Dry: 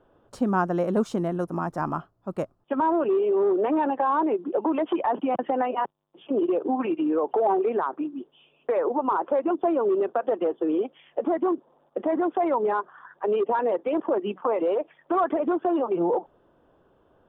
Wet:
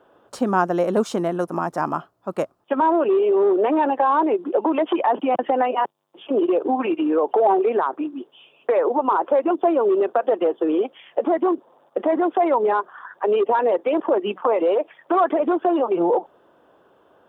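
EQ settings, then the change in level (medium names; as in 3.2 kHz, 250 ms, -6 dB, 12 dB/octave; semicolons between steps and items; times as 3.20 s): high-pass 500 Hz 6 dB/octave; dynamic bell 1.3 kHz, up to -4 dB, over -36 dBFS, Q 0.99; +9.0 dB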